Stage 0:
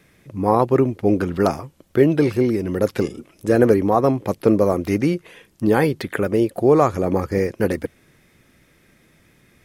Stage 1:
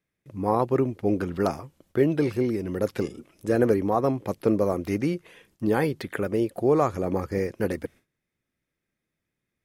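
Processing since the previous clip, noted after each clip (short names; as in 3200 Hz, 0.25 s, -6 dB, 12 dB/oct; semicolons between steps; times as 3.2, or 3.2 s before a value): gate with hold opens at -42 dBFS; gain -6.5 dB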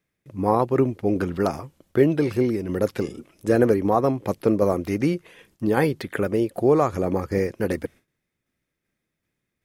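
tremolo saw down 2.6 Hz, depth 35%; gain +4.5 dB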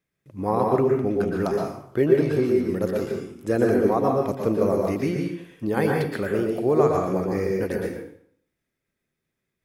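plate-style reverb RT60 0.61 s, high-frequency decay 0.8×, pre-delay 0.105 s, DRR 0 dB; gain -4 dB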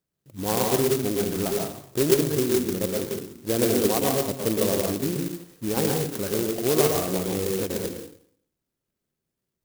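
clock jitter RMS 0.15 ms; gain -2 dB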